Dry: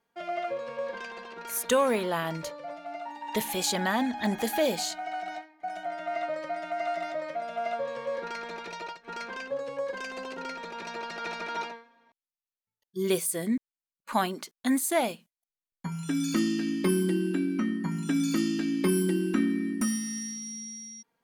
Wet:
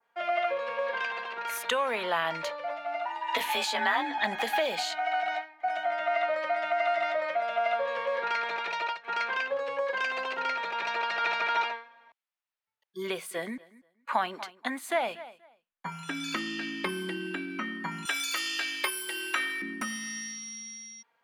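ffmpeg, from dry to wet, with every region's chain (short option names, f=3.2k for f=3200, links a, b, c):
-filter_complex "[0:a]asettb=1/sr,asplit=3[a][b][c];[a]atrim=end=3.054[d];[b]atrim=start=3.05:end=4.18,asetpts=PTS-STARTPTS,afade=t=in:d=0.004:c=qsin,afade=t=out:st=1.126:d=0.004:c=qsin,afreqshift=38,asplit=2[e][f];[f]adelay=14,volume=-4.5dB[g];[e][g]amix=inputs=2:normalize=0,atrim=end_sample=49833[h];[c]atrim=start=4.176[i];[d][h]acrossfade=d=0.004:c1=hsin:c2=qsin[j];[j][i]acrossfade=d=0.004:c1=qsin:c2=hsin,asettb=1/sr,asplit=3[k][l][m];[k]atrim=end=13.074[n];[l]atrim=start=13.07:end=15.86,asetpts=PTS-STARTPTS,afade=t=in:d=0.004:c=qsin,afade=t=out:st=2.786:d=0.004:c=qsin,highshelf=f=2.4k:g=-6.5,aecho=1:1:239|478:0.0794|0.0151,atrim=end_sample=123039[o];[m]atrim=start=15.856[p];[n][o]acrossfade=d=0.004:c1=hsin:c2=qsin[q];[q][p]acrossfade=d=0.004:c1=qsin:c2=hsin,asettb=1/sr,asplit=3[r][s][t];[r]atrim=end=18.054[u];[s]atrim=start=18.05:end=19.62,asetpts=PTS-STARTPTS,afade=t=in:d=0.004:c=qsin,afade=t=out:st=1.566:d=0.004:c=qsin,highpass=f=450:w=0.5412,highpass=f=450:w=1.3066,aemphasis=mode=production:type=75kf[v];[t]atrim=start=19.616[w];[u][v]acrossfade=d=0.004:c1=hsin:c2=qsin[x];[x][w]acrossfade=d=0.004:c1=qsin:c2=hsin,adynamicequalizer=threshold=0.00398:dfrequency=3300:dqfactor=0.86:tfrequency=3300:tqfactor=0.86:attack=5:release=100:ratio=0.375:range=2.5:mode=boostabove:tftype=bell,acrossover=split=160[y][z];[z]acompressor=threshold=-28dB:ratio=6[aa];[y][aa]amix=inputs=2:normalize=0,acrossover=split=560 3200:gain=0.126 1 0.2[ab][ac][ad];[ab][ac][ad]amix=inputs=3:normalize=0,volume=7.5dB"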